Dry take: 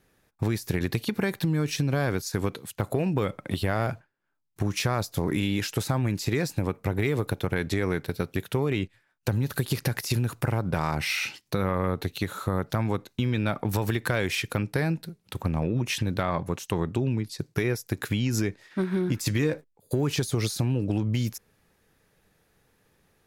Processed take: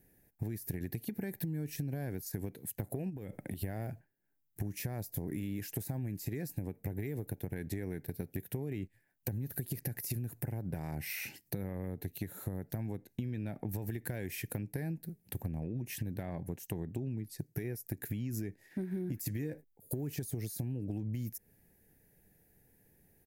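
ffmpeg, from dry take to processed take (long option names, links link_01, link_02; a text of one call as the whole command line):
ffmpeg -i in.wav -filter_complex "[0:a]asplit=3[link_01][link_02][link_03];[link_01]afade=type=out:start_time=3.09:duration=0.02[link_04];[link_02]acompressor=threshold=-32dB:ratio=6:attack=3.2:release=140:knee=1:detection=peak,afade=type=in:start_time=3.09:duration=0.02,afade=type=out:start_time=3.62:duration=0.02[link_05];[link_03]afade=type=in:start_time=3.62:duration=0.02[link_06];[link_04][link_05][link_06]amix=inputs=3:normalize=0,asettb=1/sr,asplit=3[link_07][link_08][link_09];[link_07]atrim=end=12.964[link_10];[link_08]atrim=start=12.96:end=13.9,asetpts=PTS-STARTPTS,afade=type=in:duration=0.004:curve=qsin,afade=type=out:start_time=0.936:duration=0.004:curve=qsin,highshelf=frequency=12000:gain=-8.5[link_11];[link_09]atrim=start=13.896[link_12];[link_10][link_11]acrossfade=duration=0.004:curve1=hsin:curve2=qsin[link_13];[link_13][link_12]acrossfade=duration=0.004:curve1=qsin:curve2=hsin,firequalizer=gain_entry='entry(280,0);entry(530,-6);entry(760,-5);entry(1200,-23);entry(1700,-5);entry(3400,-15);entry(4900,-10);entry(14000,10)':delay=0.05:min_phase=1,acompressor=threshold=-36dB:ratio=4" out.wav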